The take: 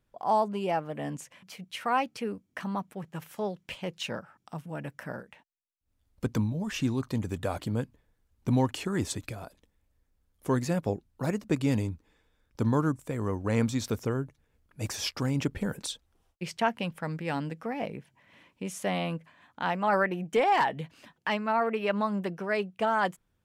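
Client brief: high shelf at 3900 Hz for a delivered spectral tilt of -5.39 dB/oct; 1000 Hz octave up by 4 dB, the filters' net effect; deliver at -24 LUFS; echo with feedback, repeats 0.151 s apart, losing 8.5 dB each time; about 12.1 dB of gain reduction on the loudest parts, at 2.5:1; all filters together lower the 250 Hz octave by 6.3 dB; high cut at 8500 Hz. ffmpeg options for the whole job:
-af "lowpass=8.5k,equalizer=f=250:t=o:g=-8.5,equalizer=f=1k:t=o:g=6,highshelf=f=3.9k:g=-6,acompressor=threshold=-36dB:ratio=2.5,aecho=1:1:151|302|453|604:0.376|0.143|0.0543|0.0206,volume=14dB"

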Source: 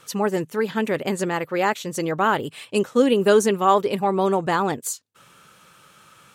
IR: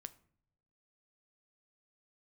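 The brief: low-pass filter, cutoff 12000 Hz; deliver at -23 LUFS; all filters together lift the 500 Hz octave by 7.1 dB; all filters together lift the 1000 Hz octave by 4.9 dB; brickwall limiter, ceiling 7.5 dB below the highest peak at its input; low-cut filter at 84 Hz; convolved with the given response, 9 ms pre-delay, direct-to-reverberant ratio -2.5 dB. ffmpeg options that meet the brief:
-filter_complex "[0:a]highpass=84,lowpass=12k,equalizer=f=500:t=o:g=8,equalizer=f=1k:t=o:g=3.5,alimiter=limit=-6.5dB:level=0:latency=1,asplit=2[a][b];[1:a]atrim=start_sample=2205,adelay=9[c];[b][c]afir=irnorm=-1:irlink=0,volume=8dB[d];[a][d]amix=inputs=2:normalize=0,volume=-9dB"

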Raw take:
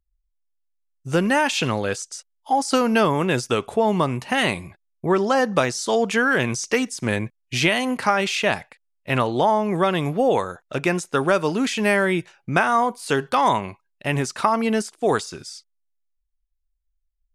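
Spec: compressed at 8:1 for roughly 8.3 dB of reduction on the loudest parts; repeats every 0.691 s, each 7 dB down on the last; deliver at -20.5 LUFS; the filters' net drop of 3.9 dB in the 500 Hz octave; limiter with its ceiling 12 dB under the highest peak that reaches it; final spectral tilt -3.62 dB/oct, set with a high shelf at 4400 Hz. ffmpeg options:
-af "equalizer=f=500:t=o:g=-5,highshelf=f=4.4k:g=8,acompressor=threshold=-23dB:ratio=8,alimiter=limit=-21dB:level=0:latency=1,aecho=1:1:691|1382|2073|2764|3455:0.447|0.201|0.0905|0.0407|0.0183,volume=9.5dB"

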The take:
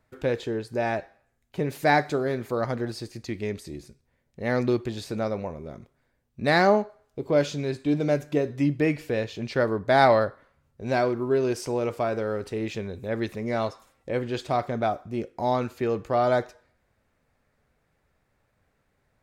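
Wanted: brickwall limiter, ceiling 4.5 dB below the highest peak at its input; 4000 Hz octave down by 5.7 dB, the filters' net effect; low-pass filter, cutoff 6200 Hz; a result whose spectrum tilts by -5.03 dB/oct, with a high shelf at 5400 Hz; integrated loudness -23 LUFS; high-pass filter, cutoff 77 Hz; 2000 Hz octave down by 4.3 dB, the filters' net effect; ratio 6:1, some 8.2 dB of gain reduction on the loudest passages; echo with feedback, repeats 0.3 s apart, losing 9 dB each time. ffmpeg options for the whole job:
-af "highpass=77,lowpass=6.2k,equalizer=f=2k:t=o:g=-5,equalizer=f=4k:t=o:g=-8,highshelf=f=5.4k:g=8.5,acompressor=threshold=-23dB:ratio=6,alimiter=limit=-19.5dB:level=0:latency=1,aecho=1:1:300|600|900|1200:0.355|0.124|0.0435|0.0152,volume=8dB"

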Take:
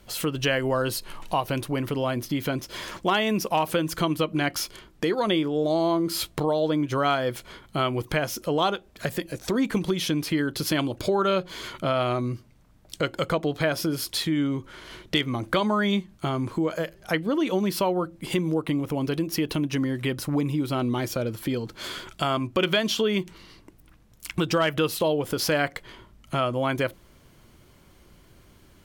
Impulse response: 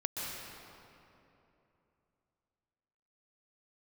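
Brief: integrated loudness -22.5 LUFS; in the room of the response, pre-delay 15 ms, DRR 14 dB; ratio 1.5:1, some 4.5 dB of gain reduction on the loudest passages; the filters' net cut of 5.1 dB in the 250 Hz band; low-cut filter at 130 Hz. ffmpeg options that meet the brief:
-filter_complex "[0:a]highpass=130,equalizer=f=250:t=o:g=-6.5,acompressor=threshold=-32dB:ratio=1.5,asplit=2[a][b];[1:a]atrim=start_sample=2205,adelay=15[c];[b][c]afir=irnorm=-1:irlink=0,volume=-18dB[d];[a][d]amix=inputs=2:normalize=0,volume=9dB"

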